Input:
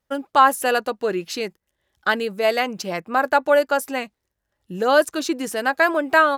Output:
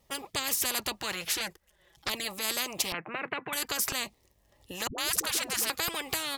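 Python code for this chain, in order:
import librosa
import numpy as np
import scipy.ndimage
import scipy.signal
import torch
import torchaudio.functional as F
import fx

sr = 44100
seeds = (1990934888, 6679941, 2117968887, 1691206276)

y = fx.env_flanger(x, sr, rest_ms=6.4, full_db=-16.0, at=(1.32, 2.24), fade=0.02)
y = fx.filter_lfo_notch(y, sr, shape='square', hz=0.51, low_hz=260.0, high_hz=1500.0, q=2.0)
y = fx.ellip_bandpass(y, sr, low_hz=130.0, high_hz=2200.0, order=3, stop_db=40, at=(2.92, 3.53))
y = fx.dispersion(y, sr, late='highs', ms=111.0, hz=360.0, at=(4.87, 5.7))
y = fx.spectral_comp(y, sr, ratio=10.0)
y = F.gain(torch.from_numpy(y), -7.0).numpy()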